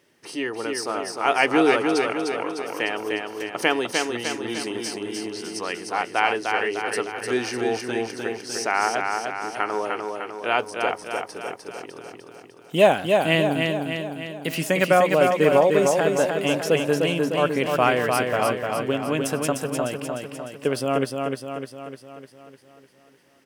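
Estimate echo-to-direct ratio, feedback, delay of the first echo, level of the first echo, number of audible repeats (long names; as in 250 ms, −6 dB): −2.5 dB, 56%, 302 ms, −4.0 dB, 7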